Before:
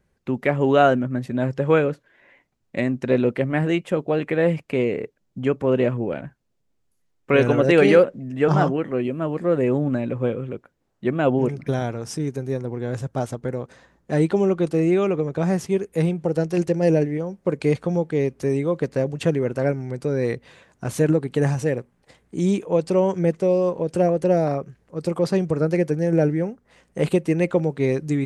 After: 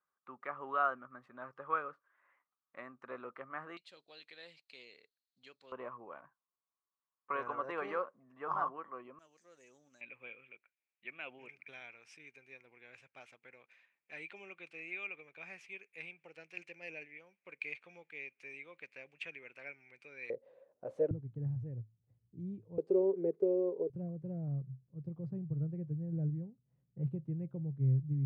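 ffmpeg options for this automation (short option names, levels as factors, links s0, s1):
-af "asetnsamples=n=441:p=0,asendcmd='3.77 bandpass f 4200;5.72 bandpass f 1100;9.19 bandpass f 6100;10.01 bandpass f 2400;20.3 bandpass f 540;21.11 bandpass f 110;22.78 bandpass f 410;23.9 bandpass f 130',bandpass=f=1200:t=q:w=10:csg=0"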